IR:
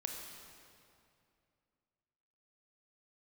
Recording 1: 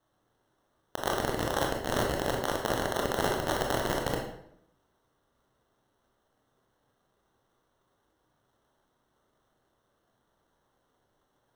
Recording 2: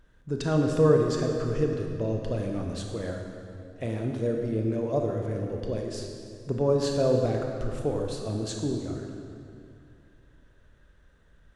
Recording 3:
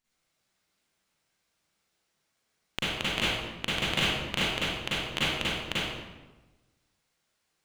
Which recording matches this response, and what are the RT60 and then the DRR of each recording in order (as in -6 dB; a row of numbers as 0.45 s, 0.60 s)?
2; 0.75 s, 2.5 s, 1.2 s; -1.0 dB, 1.5 dB, -10.5 dB